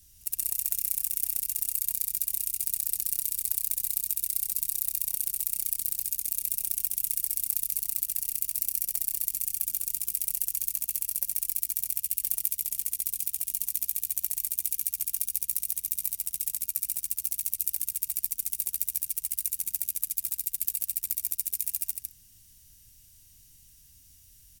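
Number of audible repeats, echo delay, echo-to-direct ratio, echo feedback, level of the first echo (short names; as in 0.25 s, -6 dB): 1, 0.156 s, -4.0 dB, no steady repeat, -4.0 dB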